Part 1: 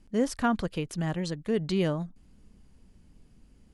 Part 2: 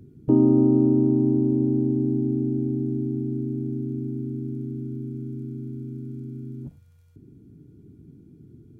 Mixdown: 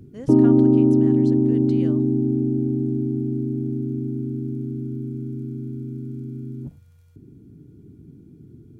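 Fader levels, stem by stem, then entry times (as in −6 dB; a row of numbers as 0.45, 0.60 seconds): −11.5, +3.0 decibels; 0.00, 0.00 seconds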